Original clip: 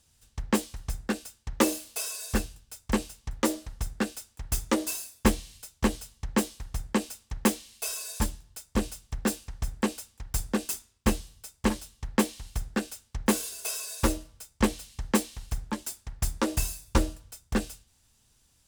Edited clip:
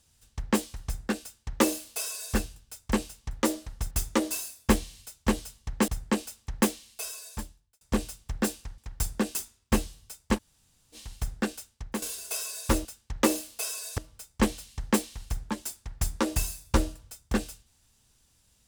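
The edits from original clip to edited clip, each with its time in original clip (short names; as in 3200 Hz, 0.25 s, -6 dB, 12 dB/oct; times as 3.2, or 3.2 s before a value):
1.22–2.35 copy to 14.19
3.91–4.47 cut
6.44–6.71 cut
7.48–8.64 fade out
9.61–10.12 cut
11.7–12.29 room tone, crossfade 0.06 s
12.89–13.36 fade out, to -12.5 dB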